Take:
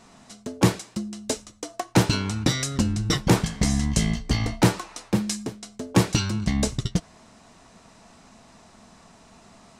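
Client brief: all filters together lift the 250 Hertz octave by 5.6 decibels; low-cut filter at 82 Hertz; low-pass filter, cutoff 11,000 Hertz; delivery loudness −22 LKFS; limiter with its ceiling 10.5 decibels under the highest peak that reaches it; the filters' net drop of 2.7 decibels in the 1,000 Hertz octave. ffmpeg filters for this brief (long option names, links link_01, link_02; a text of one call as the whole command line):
ffmpeg -i in.wav -af "highpass=82,lowpass=11000,equalizer=frequency=250:width_type=o:gain=8,equalizer=frequency=1000:width_type=o:gain=-4,volume=3dB,alimiter=limit=-9dB:level=0:latency=1" out.wav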